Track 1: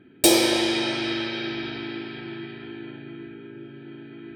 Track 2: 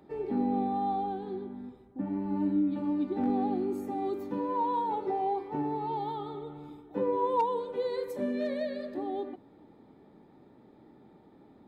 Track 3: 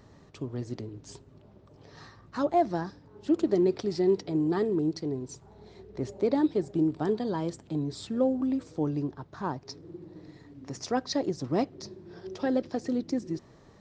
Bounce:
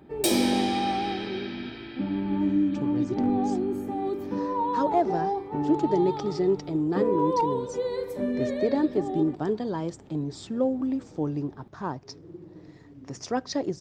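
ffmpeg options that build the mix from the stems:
-filter_complex "[0:a]volume=-8dB[a];[1:a]lowshelf=f=140:g=9,volume=2dB[b];[2:a]equalizer=f=4.1k:t=o:w=0.25:g=-5,adelay=2400,volume=0.5dB[c];[a][b][c]amix=inputs=3:normalize=0"

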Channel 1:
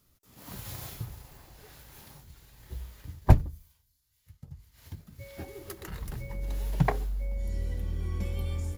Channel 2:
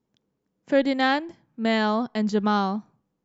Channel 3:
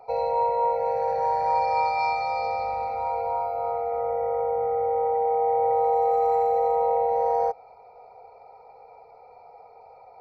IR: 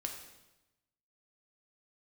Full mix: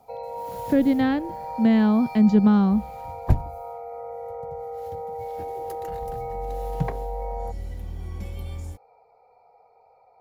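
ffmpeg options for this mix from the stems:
-filter_complex "[0:a]volume=-1.5dB[a];[1:a]bass=f=250:g=12,treble=f=4k:g=-8,volume=1dB[b];[2:a]volume=-8.5dB[c];[a][b][c]amix=inputs=3:normalize=0,acrossover=split=390[d][e];[e]acompressor=threshold=-33dB:ratio=2[f];[d][f]amix=inputs=2:normalize=0"

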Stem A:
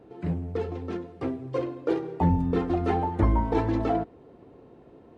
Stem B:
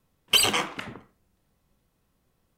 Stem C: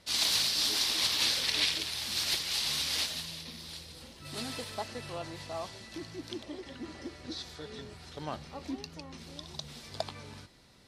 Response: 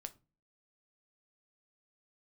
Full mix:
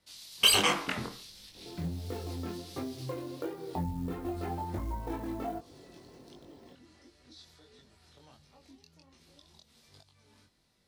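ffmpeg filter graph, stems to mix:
-filter_complex "[0:a]acrusher=bits=7:mode=log:mix=0:aa=0.000001,bandreject=f=450:w=13,adelay=1550,volume=0.5dB[a];[1:a]dynaudnorm=f=150:g=7:m=12dB,adelay=100,volume=-1dB[b];[2:a]acrossover=split=130|3000[c][d][e];[d]acompressor=threshold=-45dB:ratio=3[f];[c][f][e]amix=inputs=3:normalize=0,alimiter=level_in=3.5dB:limit=-24dB:level=0:latency=1:release=437,volume=-3.5dB,volume=-10dB[g];[a][g]amix=inputs=2:normalize=0,highshelf=f=10k:g=8,acompressor=threshold=-31dB:ratio=5,volume=0dB[h];[b][h]amix=inputs=2:normalize=0,flanger=delay=20:depth=4:speed=1.4"

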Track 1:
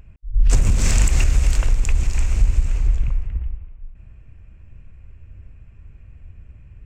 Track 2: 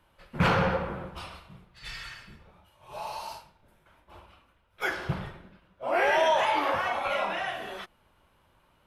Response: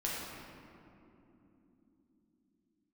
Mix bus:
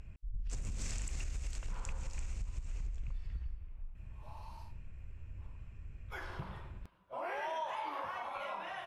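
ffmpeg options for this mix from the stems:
-filter_complex "[0:a]acompressor=threshold=-19dB:ratio=6,lowpass=7.8k,highshelf=f=4.6k:g=8.5,volume=-5dB[a];[1:a]equalizer=f=1k:t=o:w=0.42:g=8,adelay=1300,volume=-8.5dB,afade=t=in:st=6.07:d=0.25:silence=0.237137[b];[a][b]amix=inputs=2:normalize=0,acompressor=threshold=-41dB:ratio=2.5"

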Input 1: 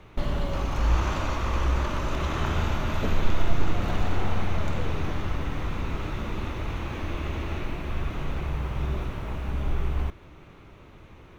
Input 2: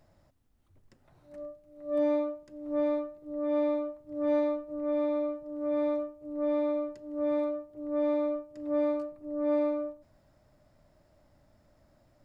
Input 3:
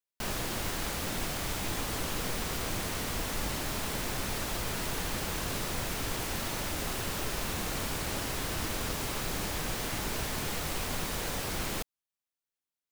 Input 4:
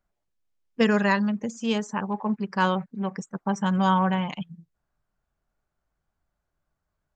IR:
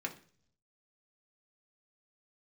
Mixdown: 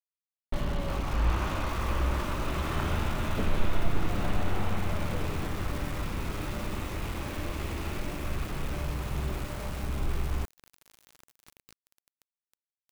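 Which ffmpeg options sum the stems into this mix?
-filter_complex "[0:a]lowpass=4.7k,adynamicequalizer=threshold=0.00355:dfrequency=190:dqfactor=5.3:tfrequency=190:tqfactor=5.3:attack=5:release=100:ratio=0.375:range=2:mode=boostabove:tftype=bell,adelay=350,volume=-3.5dB,asplit=2[a][b];[b]volume=-18.5dB[c];[1:a]highpass=71,volume=-19.5dB[d];[2:a]adelay=1500,volume=-16.5dB,asplit=2[e][f];[f]volume=-14dB[g];[4:a]atrim=start_sample=2205[h];[c][g]amix=inputs=2:normalize=0[i];[i][h]afir=irnorm=-1:irlink=0[j];[a][d][e][j]amix=inputs=4:normalize=0,aeval=exprs='val(0)*gte(abs(val(0)),0.0126)':c=same"

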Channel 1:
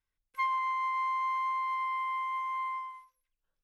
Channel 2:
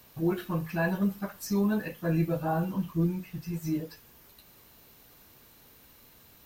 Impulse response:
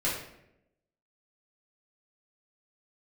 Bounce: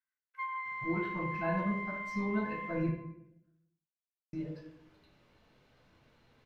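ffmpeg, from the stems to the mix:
-filter_complex "[0:a]bandpass=f=1.6k:t=q:w=2.8:csg=0,volume=-2dB,asplit=2[a][b];[b]volume=-11dB[c];[1:a]lowpass=3.3k,adelay=650,volume=-11.5dB,asplit=3[d][e][f];[d]atrim=end=2.89,asetpts=PTS-STARTPTS,afade=t=out:st=2.886:d=0.004:c=hsin[g];[e]atrim=start=2.89:end=4.33,asetpts=PTS-STARTPTS,volume=0[h];[f]atrim=start=4.33,asetpts=PTS-STARTPTS,afade=t=in:d=0.004:c=hsin[i];[g][h][i]concat=n=3:v=0:a=1,asplit=2[j][k];[k]volume=-5.5dB[l];[2:a]atrim=start_sample=2205[m];[c][l]amix=inputs=2:normalize=0[n];[n][m]afir=irnorm=-1:irlink=0[o];[a][j][o]amix=inputs=3:normalize=0"

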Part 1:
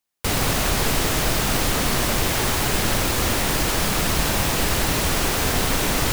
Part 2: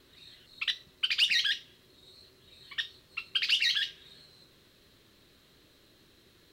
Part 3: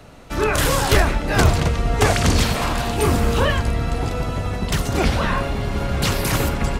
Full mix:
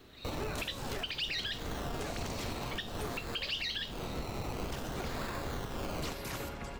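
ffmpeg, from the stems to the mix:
-filter_complex "[0:a]acrusher=samples=21:mix=1:aa=0.000001:lfo=1:lforange=12.6:lforate=0.52,volume=-15.5dB[a];[1:a]equalizer=f=9.1k:w=0.35:g=-6.5,dynaudnorm=f=150:g=3:m=5dB,volume=3dB[b];[2:a]acrossover=split=280|3000[c][d][e];[c]acompressor=threshold=-25dB:ratio=6[f];[f][d][e]amix=inputs=3:normalize=0,acrusher=bits=8:mix=0:aa=0.000001,volume=-17dB[g];[a][b][g]amix=inputs=3:normalize=0,equalizer=f=10k:t=o:w=0.42:g=-5,acrossover=split=480|3000[h][i][j];[i]acompressor=threshold=-41dB:ratio=1.5[k];[h][k][j]amix=inputs=3:normalize=0,alimiter=level_in=3dB:limit=-24dB:level=0:latency=1:release=268,volume=-3dB"

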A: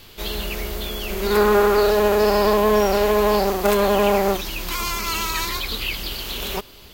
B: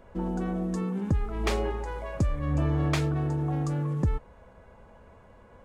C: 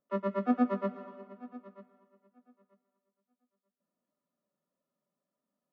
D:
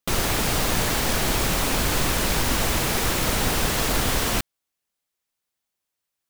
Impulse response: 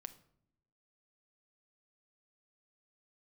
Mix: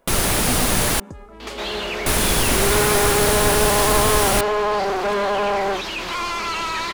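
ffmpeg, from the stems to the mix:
-filter_complex "[0:a]asplit=2[a][b];[b]highpass=f=720:p=1,volume=29dB,asoftclip=type=tanh:threshold=-5dB[c];[a][c]amix=inputs=2:normalize=0,lowpass=f=1.7k:p=1,volume=-6dB,lowpass=9k,adelay=1400,volume=-8dB[d];[1:a]bass=f=250:g=-10,treble=f=4k:g=4,volume=-4.5dB[e];[2:a]volume=-1.5dB[f];[3:a]equalizer=f=10k:t=o:w=0.37:g=8,volume=3dB,asplit=3[g][h][i];[g]atrim=end=1,asetpts=PTS-STARTPTS,afade=t=out:st=0.996:d=0.004:c=hsin[j];[h]atrim=start=1:end=2.06,asetpts=PTS-STARTPTS,volume=0[k];[i]atrim=start=2.06,asetpts=PTS-STARTPTS,afade=t=in:d=0.004:c=hsin[l];[j][k][l]concat=n=3:v=0:a=1[m];[d][e][f][m]amix=inputs=4:normalize=0"

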